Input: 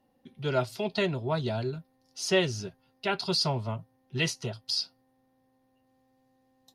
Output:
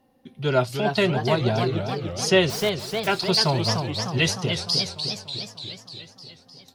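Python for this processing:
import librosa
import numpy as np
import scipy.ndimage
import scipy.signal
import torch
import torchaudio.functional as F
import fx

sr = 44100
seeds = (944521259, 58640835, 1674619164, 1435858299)

y = fx.overflow_wrap(x, sr, gain_db=38.0, at=(2.49, 3.06), fade=0.02)
y = fx.echo_warbled(y, sr, ms=299, feedback_pct=64, rate_hz=2.8, cents=207, wet_db=-6)
y = y * librosa.db_to_amplitude(6.5)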